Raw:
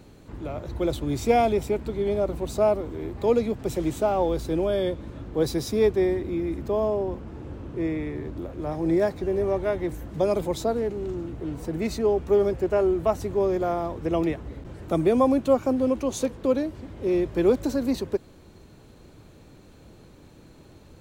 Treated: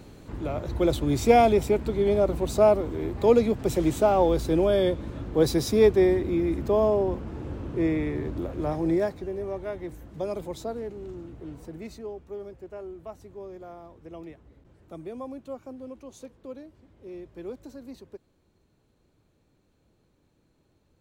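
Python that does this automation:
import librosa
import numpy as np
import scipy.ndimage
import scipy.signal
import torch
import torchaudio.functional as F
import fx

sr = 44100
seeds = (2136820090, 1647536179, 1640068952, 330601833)

y = fx.gain(x, sr, db=fx.line((8.64, 2.5), (9.35, -8.0), (11.51, -8.0), (12.29, -17.5)))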